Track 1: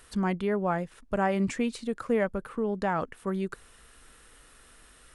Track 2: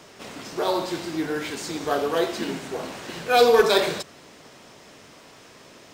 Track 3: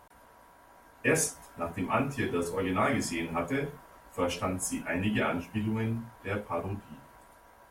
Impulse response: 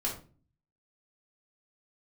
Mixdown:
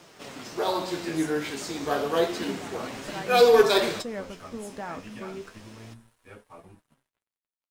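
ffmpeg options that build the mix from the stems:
-filter_complex "[0:a]dynaudnorm=f=440:g=5:m=4.22,adelay=1950,volume=0.158,asplit=2[s0][s1];[s1]volume=0.112[s2];[1:a]volume=1.26[s3];[2:a]volume=0.335[s4];[3:a]atrim=start_sample=2205[s5];[s2][s5]afir=irnorm=-1:irlink=0[s6];[s0][s3][s4][s6]amix=inputs=4:normalize=0,aeval=exprs='sgn(val(0))*max(abs(val(0))-0.00141,0)':c=same,flanger=delay=5.6:depth=9.5:regen=54:speed=0.3:shape=triangular"

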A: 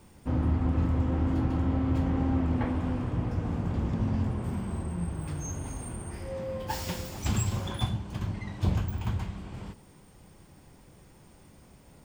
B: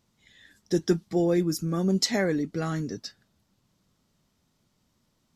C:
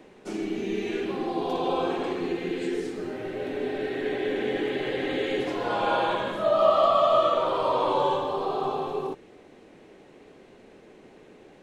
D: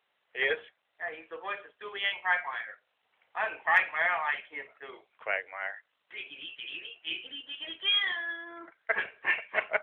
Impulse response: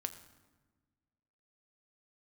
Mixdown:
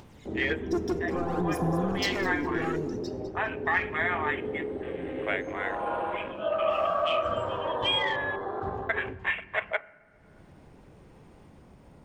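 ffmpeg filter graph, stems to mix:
-filter_complex "[0:a]lowpass=f=1500:p=1,volume=0.237[s0];[1:a]asoftclip=type=hard:threshold=0.0447,aphaser=in_gain=1:out_gain=1:delay=2.9:decay=0.63:speed=0.61:type=sinusoidal,volume=0.891,asplit=4[s1][s2][s3][s4];[s2]volume=0.282[s5];[s3]volume=0.0891[s6];[2:a]afwtdn=0.0251,volume=0.631,asplit=2[s7][s8];[s8]volume=0.501[s9];[3:a]volume=1.12,asplit=2[s10][s11];[s11]volume=0.335[s12];[s4]apad=whole_len=512647[s13];[s7][s13]sidechaingate=range=0.398:threshold=0.00112:ratio=16:detection=peak[s14];[s1][s14][s10]amix=inputs=3:normalize=0,afwtdn=0.0158,acompressor=threshold=0.0398:ratio=6,volume=1[s15];[4:a]atrim=start_sample=2205[s16];[s5][s9][s12]amix=inputs=3:normalize=0[s17];[s17][s16]afir=irnorm=-1:irlink=0[s18];[s6]aecho=0:1:203|406|609|812:1|0.29|0.0841|0.0244[s19];[s0][s15][s18][s19]amix=inputs=4:normalize=0,lowshelf=f=140:g=-3,acompressor=mode=upward:threshold=0.0126:ratio=2.5"

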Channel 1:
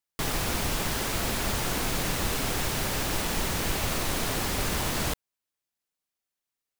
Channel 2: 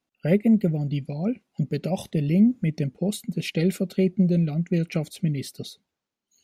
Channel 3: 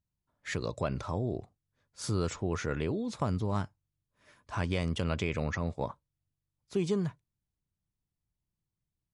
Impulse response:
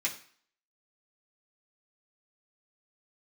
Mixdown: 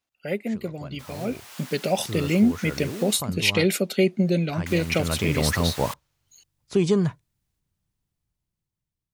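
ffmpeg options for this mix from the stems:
-filter_complex "[0:a]highpass=920,adelay=800,volume=0.335,asplit=3[s0][s1][s2];[s0]atrim=end=3.18,asetpts=PTS-STARTPTS,afade=t=out:st=3.176:d=0.004:c=hsin[s3];[s1]atrim=start=3.18:end=4.66,asetpts=PTS-STARTPTS,volume=0[s4];[s2]atrim=start=4.66,asetpts=PTS-STARTPTS,afade=t=in:d=0.004:c=hsin[s5];[s3][s4][s5]concat=n=3:v=0:a=1[s6];[1:a]highpass=f=850:p=1,volume=1.12,asplit=2[s7][s8];[2:a]volume=0.891,afade=t=in:st=4.86:d=0.66:silence=0.298538[s9];[s8]apad=whole_len=334987[s10];[s6][s10]sidechaincompress=threshold=0.00794:ratio=8:attack=16:release=870[s11];[s11][s7][s9]amix=inputs=3:normalize=0,dynaudnorm=f=300:g=9:m=3.35"

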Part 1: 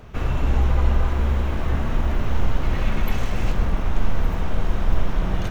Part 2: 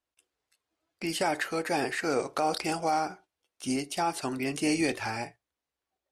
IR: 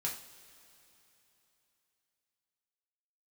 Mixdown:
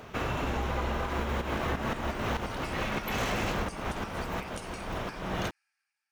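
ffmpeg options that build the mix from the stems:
-filter_complex "[0:a]dynaudnorm=f=300:g=9:m=3.76,volume=1.41[s0];[1:a]highpass=f=1300:w=0.5412,highpass=f=1300:w=1.3066,acompressor=threshold=0.0158:ratio=4,aeval=exprs='val(0)*pow(10,-20*if(lt(mod(5.7*n/s,1),2*abs(5.7)/1000),1-mod(5.7*n/s,1)/(2*abs(5.7)/1000),(mod(5.7*n/s,1)-2*abs(5.7)/1000)/(1-2*abs(5.7)/1000))/20)':c=same,volume=0.596,afade=t=in:st=1.69:d=0.7:silence=0.251189,asplit=3[s1][s2][s3];[s2]volume=0.299[s4];[s3]apad=whole_len=242885[s5];[s0][s5]sidechaincompress=threshold=0.00141:ratio=10:attack=10:release=247[s6];[2:a]atrim=start_sample=2205[s7];[s4][s7]afir=irnorm=-1:irlink=0[s8];[s6][s1][s8]amix=inputs=3:normalize=0,highpass=f=330:p=1,acompressor=threshold=0.0447:ratio=6"

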